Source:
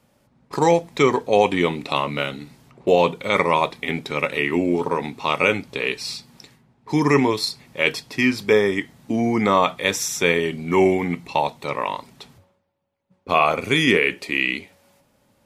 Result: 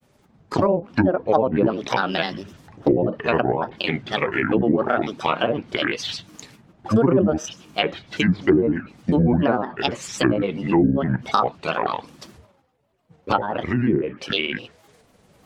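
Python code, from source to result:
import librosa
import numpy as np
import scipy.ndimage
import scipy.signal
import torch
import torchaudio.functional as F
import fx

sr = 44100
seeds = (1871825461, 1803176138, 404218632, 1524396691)

y = fx.recorder_agc(x, sr, target_db=-10.5, rise_db_per_s=6.7, max_gain_db=30)
y = fx.env_lowpass_down(y, sr, base_hz=410.0, full_db=-12.5)
y = fx.granulator(y, sr, seeds[0], grain_ms=100.0, per_s=20.0, spray_ms=22.0, spread_st=7)
y = F.gain(torch.from_numpy(y), 2.5).numpy()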